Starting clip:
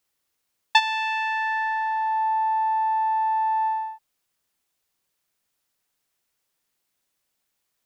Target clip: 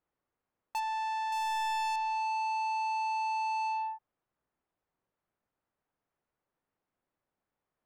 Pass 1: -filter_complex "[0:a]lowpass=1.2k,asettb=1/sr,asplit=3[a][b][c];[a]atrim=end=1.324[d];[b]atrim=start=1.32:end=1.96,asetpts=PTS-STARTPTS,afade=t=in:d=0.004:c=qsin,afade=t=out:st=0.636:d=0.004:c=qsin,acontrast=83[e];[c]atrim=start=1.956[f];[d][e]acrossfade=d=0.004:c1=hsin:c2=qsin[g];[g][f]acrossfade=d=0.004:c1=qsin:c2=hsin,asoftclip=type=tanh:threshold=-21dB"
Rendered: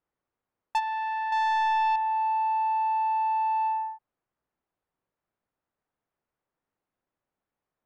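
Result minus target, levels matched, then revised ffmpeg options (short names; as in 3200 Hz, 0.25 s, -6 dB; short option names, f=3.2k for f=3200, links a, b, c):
soft clip: distortion -7 dB
-filter_complex "[0:a]lowpass=1.2k,asettb=1/sr,asplit=3[a][b][c];[a]atrim=end=1.324[d];[b]atrim=start=1.32:end=1.96,asetpts=PTS-STARTPTS,afade=t=in:d=0.004:c=qsin,afade=t=out:st=0.636:d=0.004:c=qsin,acontrast=83[e];[c]atrim=start=1.956[f];[d][e]acrossfade=d=0.004:c1=hsin:c2=qsin[g];[g][f]acrossfade=d=0.004:c1=qsin:c2=hsin,asoftclip=type=tanh:threshold=-31dB"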